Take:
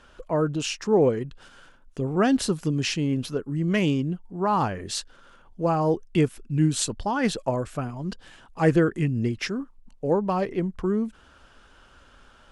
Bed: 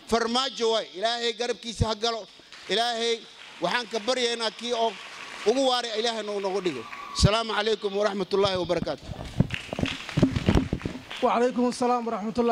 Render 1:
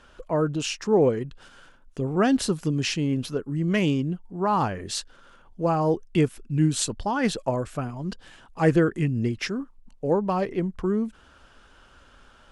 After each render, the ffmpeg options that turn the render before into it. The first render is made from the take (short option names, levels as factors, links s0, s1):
-af anull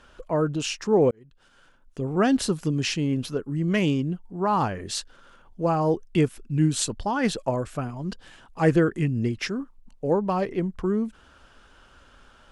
-filter_complex "[0:a]asplit=2[s0][s1];[s0]atrim=end=1.11,asetpts=PTS-STARTPTS,afade=t=out:st=1.106:d=0.004:c=hsin[s2];[s1]atrim=start=1.11,asetpts=PTS-STARTPTS,afade=t=in:d=1.08[s3];[s2][s3]concat=n=2:v=0:a=1"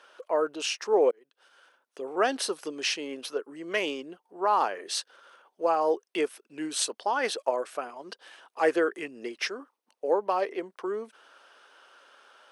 -af "highpass=f=410:w=0.5412,highpass=f=410:w=1.3066,bandreject=f=7200:w=6.6"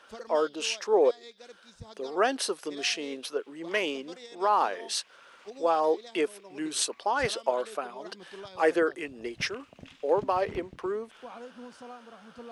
-filter_complex "[1:a]volume=0.0841[s0];[0:a][s0]amix=inputs=2:normalize=0"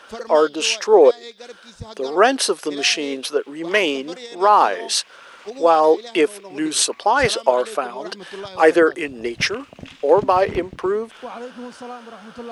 -af "volume=3.55,alimiter=limit=0.891:level=0:latency=1"